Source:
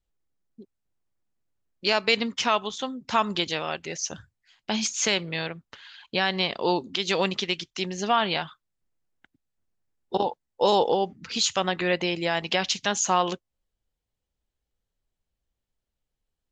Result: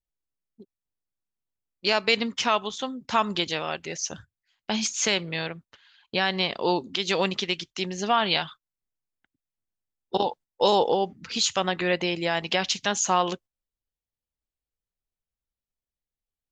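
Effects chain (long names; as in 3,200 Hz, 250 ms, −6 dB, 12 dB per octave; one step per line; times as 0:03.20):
noise gate −44 dBFS, range −11 dB
0:08.25–0:10.68: dynamic equaliser 4,000 Hz, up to +6 dB, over −43 dBFS, Q 0.91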